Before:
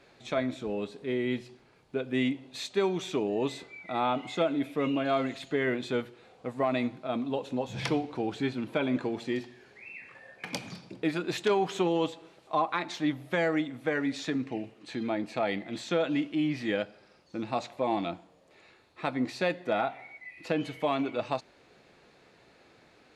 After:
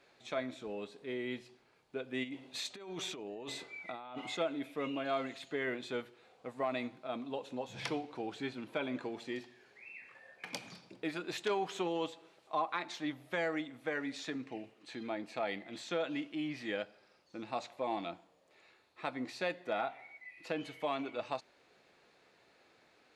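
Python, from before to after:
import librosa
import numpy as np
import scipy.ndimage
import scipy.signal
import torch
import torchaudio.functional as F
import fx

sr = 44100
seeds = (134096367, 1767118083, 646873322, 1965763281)

y = fx.low_shelf(x, sr, hz=270.0, db=-9.5)
y = fx.over_compress(y, sr, threshold_db=-38.0, ratio=-1.0, at=(2.23, 4.36), fade=0.02)
y = F.gain(torch.from_numpy(y), -5.5).numpy()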